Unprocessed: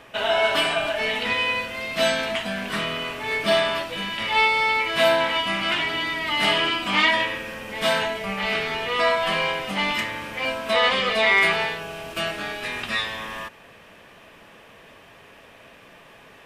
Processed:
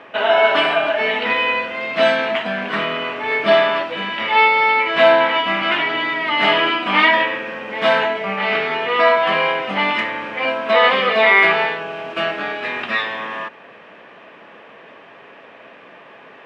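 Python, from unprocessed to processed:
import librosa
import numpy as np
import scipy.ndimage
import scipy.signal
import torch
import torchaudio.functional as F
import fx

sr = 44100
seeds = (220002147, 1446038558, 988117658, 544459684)

y = fx.bandpass_edges(x, sr, low_hz=240.0, high_hz=2400.0)
y = F.gain(torch.from_numpy(y), 7.5).numpy()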